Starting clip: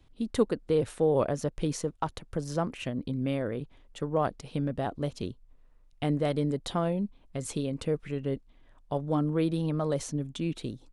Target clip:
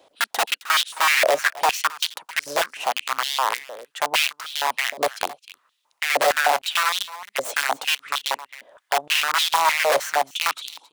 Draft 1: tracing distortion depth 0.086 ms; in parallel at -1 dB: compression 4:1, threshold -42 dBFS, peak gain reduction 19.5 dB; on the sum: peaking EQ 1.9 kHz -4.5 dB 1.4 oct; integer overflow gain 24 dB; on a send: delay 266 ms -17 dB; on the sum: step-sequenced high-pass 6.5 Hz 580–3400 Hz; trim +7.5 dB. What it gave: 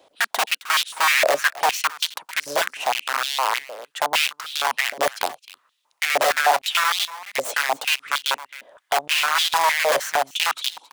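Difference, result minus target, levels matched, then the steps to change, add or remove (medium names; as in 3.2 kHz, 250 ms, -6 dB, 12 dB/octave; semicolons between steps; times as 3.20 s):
compression: peak gain reduction -8 dB
change: compression 4:1, threshold -52.5 dBFS, peak gain reduction 27.5 dB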